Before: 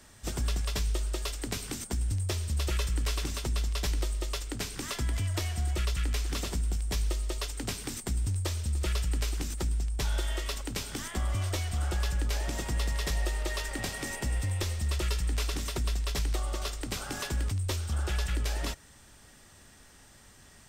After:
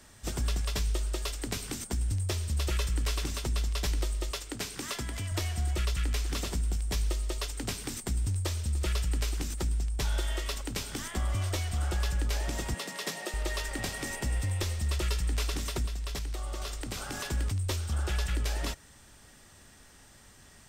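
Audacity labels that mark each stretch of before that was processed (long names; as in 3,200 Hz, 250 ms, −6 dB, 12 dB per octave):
4.310000	5.320000	low-shelf EQ 79 Hz −12 dB
12.740000	13.340000	Butterworth high-pass 170 Hz
15.860000	17.260000	downward compressor, threshold −31 dBFS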